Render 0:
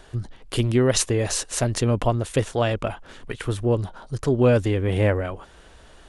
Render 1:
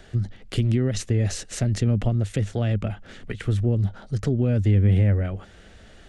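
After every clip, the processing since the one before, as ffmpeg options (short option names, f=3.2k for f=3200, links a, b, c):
-filter_complex "[0:a]equalizer=f=100:t=o:w=0.33:g=9,equalizer=f=200:t=o:w=0.33:g=10,equalizer=f=1k:t=o:w=0.33:g=-12,equalizer=f=2k:t=o:w=0.33:g=4,equalizer=f=10k:t=o:w=0.33:g=-10,alimiter=limit=-10.5dB:level=0:latency=1:release=126,acrossover=split=270[a][b];[b]acompressor=threshold=-33dB:ratio=2.5[c];[a][c]amix=inputs=2:normalize=0"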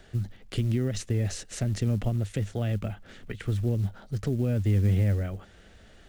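-af "acrusher=bits=8:mode=log:mix=0:aa=0.000001,volume=-5dB"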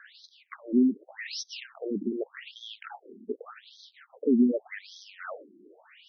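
-filter_complex "[0:a]afftfilt=real='re*pow(10,8/40*sin(2*PI*(0.83*log(max(b,1)*sr/1024/100)/log(2)-(1.1)*(pts-256)/sr)))':imag='im*pow(10,8/40*sin(2*PI*(0.83*log(max(b,1)*sr/1024/100)/log(2)-(1.1)*(pts-256)/sr)))':win_size=1024:overlap=0.75,acrossover=split=3600[a][b];[b]asoftclip=type=tanh:threshold=-37.5dB[c];[a][c]amix=inputs=2:normalize=0,afftfilt=real='re*between(b*sr/1024,270*pow(4600/270,0.5+0.5*sin(2*PI*0.85*pts/sr))/1.41,270*pow(4600/270,0.5+0.5*sin(2*PI*0.85*pts/sr))*1.41)':imag='im*between(b*sr/1024,270*pow(4600/270,0.5+0.5*sin(2*PI*0.85*pts/sr))/1.41,270*pow(4600/270,0.5+0.5*sin(2*PI*0.85*pts/sr))*1.41)':win_size=1024:overlap=0.75,volume=8.5dB"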